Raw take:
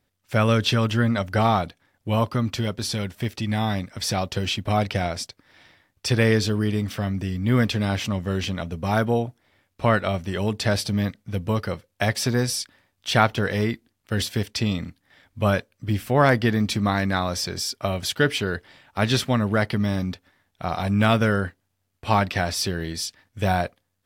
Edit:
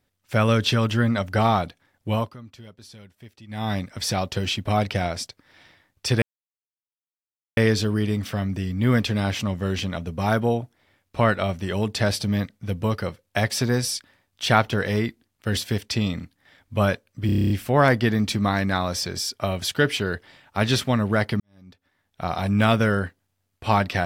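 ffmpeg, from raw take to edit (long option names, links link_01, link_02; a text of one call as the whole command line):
ffmpeg -i in.wav -filter_complex "[0:a]asplit=13[link_01][link_02][link_03][link_04][link_05][link_06][link_07][link_08][link_09][link_10][link_11][link_12][link_13];[link_01]atrim=end=2.36,asetpts=PTS-STARTPTS,afade=type=out:start_time=2.11:duration=0.25:silence=0.11885[link_14];[link_02]atrim=start=2.36:end=3.48,asetpts=PTS-STARTPTS,volume=-18.5dB[link_15];[link_03]atrim=start=3.48:end=6.22,asetpts=PTS-STARTPTS,afade=type=in:duration=0.25:silence=0.11885,afade=type=out:start_time=2.736:duration=0.004:curve=hsin,apad=pad_dur=1.35[link_16];[link_04]atrim=start=6.22:end=15.942,asetpts=PTS-STARTPTS,afade=type=in:duration=0.004:curve=hsin[link_17];[link_05]atrim=start=15.908:end=15.942[link_18];[link_06]atrim=start=15.908:end=15.942[link_19];[link_07]atrim=start=15.908:end=15.942[link_20];[link_08]atrim=start=15.908:end=15.942[link_21];[link_09]atrim=start=15.908:end=15.942[link_22];[link_10]atrim=start=15.908:end=15.942[link_23];[link_11]atrim=start=15.908:end=15.942[link_24];[link_12]atrim=start=15.908:end=19.81,asetpts=PTS-STARTPTS,afade=type=out:start_time=3.898:duration=0.004:curve=hsin[link_25];[link_13]atrim=start=19.81,asetpts=PTS-STARTPTS,afade=type=in:duration=0.82:curve=qua[link_26];[link_14][link_15][link_16][link_17]concat=n=4:v=0:a=1[link_27];[link_27][link_18]acrossfade=duration=0.004:curve1=hsin:curve2=hsin[link_28];[link_28][link_19]acrossfade=duration=0.004:curve1=hsin:curve2=hsin[link_29];[link_29][link_20]acrossfade=duration=0.004:curve1=hsin:curve2=hsin[link_30];[link_30][link_21]acrossfade=duration=0.004:curve1=hsin:curve2=hsin[link_31];[link_31][link_22]acrossfade=duration=0.004:curve1=hsin:curve2=hsin[link_32];[link_32][link_23]acrossfade=duration=0.004:curve1=hsin:curve2=hsin[link_33];[link_33][link_24]acrossfade=duration=0.004:curve1=hsin:curve2=hsin[link_34];[link_25][link_26]concat=n=2:v=0:a=1[link_35];[link_34][link_35]acrossfade=duration=0.004:curve1=hsin:curve2=hsin" out.wav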